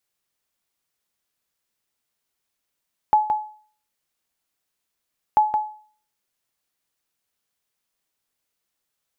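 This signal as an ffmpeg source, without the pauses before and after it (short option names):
-f lavfi -i "aevalsrc='0.355*(sin(2*PI*853*mod(t,2.24))*exp(-6.91*mod(t,2.24)/0.46)+0.447*sin(2*PI*853*max(mod(t,2.24)-0.17,0))*exp(-6.91*max(mod(t,2.24)-0.17,0)/0.46))':d=4.48:s=44100"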